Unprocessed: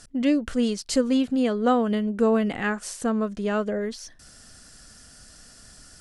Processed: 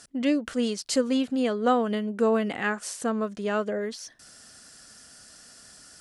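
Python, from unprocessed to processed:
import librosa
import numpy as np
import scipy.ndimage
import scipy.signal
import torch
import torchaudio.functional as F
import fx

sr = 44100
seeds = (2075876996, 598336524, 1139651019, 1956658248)

y = fx.highpass(x, sr, hz=280.0, slope=6)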